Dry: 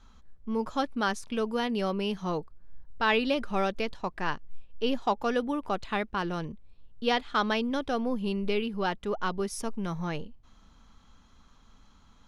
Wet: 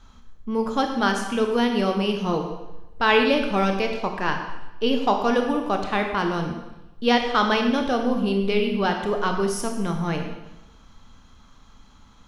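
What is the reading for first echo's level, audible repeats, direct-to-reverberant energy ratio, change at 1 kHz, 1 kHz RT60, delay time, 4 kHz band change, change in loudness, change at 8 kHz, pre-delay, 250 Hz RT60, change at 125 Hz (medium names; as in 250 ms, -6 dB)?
no echo, no echo, 3.5 dB, +7.0 dB, 1.0 s, no echo, +7.0 dB, +7.5 dB, +7.0 dB, 16 ms, 0.95 s, +7.5 dB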